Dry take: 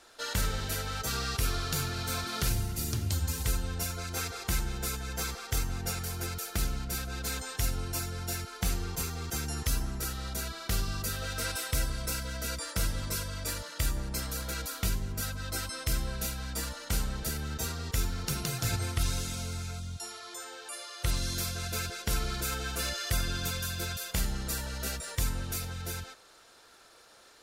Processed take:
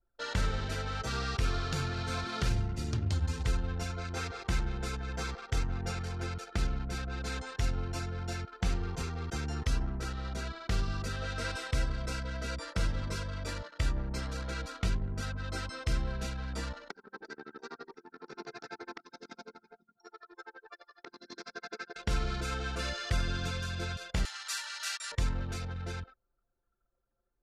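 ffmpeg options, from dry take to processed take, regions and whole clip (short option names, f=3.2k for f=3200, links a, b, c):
-filter_complex "[0:a]asettb=1/sr,asplit=3[a][b][c];[a]atrim=end=16.904[d];[b]atrim=start=16.9:end=21.96,asetpts=PTS-STARTPTS,afade=t=in:d=0.004:c=qsin,afade=t=out:st=5.056:d=0.004:c=qsin,acompressor=threshold=-30dB:ratio=8:attack=3.2:release=140:knee=1:detection=peak,tremolo=f=12:d=0.81,highpass=f=260:w=0.5412,highpass=f=260:w=1.3066,equalizer=f=400:t=q:w=4:g=7,equalizer=f=570:t=q:w=4:g=-6,equalizer=f=870:t=q:w=4:g=5,equalizer=f=1.6k:t=q:w=4:g=5,equalizer=f=3k:t=q:w=4:g=-10,equalizer=f=5.2k:t=q:w=4:g=4,lowpass=f=6k:w=0.5412,lowpass=f=6k:w=1.3066[e];[c]atrim=start=21.956[f];[d][e]acrossfade=d=0.004:c1=hsin:c2=qsin[g];[g][f]acrossfade=d=0.004:c1=qsin:c2=hsin,asettb=1/sr,asplit=3[h][i][j];[h]atrim=end=24.254[k];[i]atrim=start=24.25:end=25.12,asetpts=PTS-STARTPTS,afade=t=in:d=0.004:c=qsin,afade=t=out:st=0.866:d=0.004:c=qsin,highpass=f=1k:w=0.5412,highpass=f=1k:w=1.3066,highshelf=f=2.2k:g=10[l];[j]atrim=start=25.116[m];[k][l]acrossfade=d=0.004:c1=hsin:c2=qsin[n];[n][m]acrossfade=d=0.004:c1=qsin:c2=hsin,lowpass=8.7k,aemphasis=mode=reproduction:type=50fm,anlmdn=0.1"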